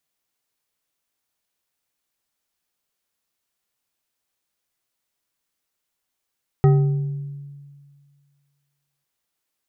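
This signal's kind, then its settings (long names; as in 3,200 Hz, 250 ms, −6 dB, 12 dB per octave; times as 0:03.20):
struck glass bar, length 2.40 s, lowest mode 142 Hz, decay 1.96 s, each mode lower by 7 dB, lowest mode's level −10 dB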